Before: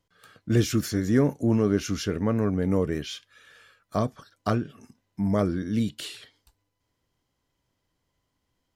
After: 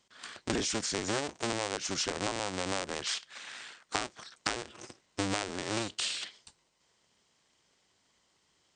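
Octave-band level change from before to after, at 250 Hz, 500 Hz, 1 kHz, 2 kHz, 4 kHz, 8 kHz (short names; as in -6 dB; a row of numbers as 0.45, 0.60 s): -13.5, -9.0, -1.0, +2.5, +4.0, +4.0 dB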